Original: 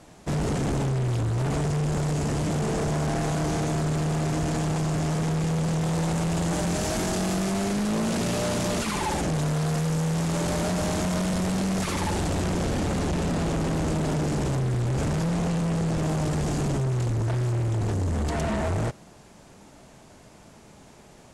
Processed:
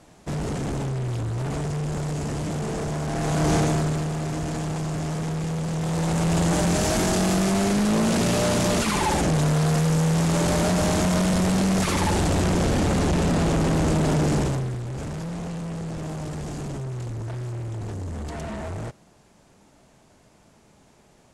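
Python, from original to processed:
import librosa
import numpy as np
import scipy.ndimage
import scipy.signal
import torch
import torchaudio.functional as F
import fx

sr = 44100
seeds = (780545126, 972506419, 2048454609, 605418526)

y = fx.gain(x, sr, db=fx.line((3.07, -2.0), (3.54, 6.5), (4.12, -2.0), (5.69, -2.0), (6.35, 4.5), (14.37, 4.5), (14.82, -6.0)))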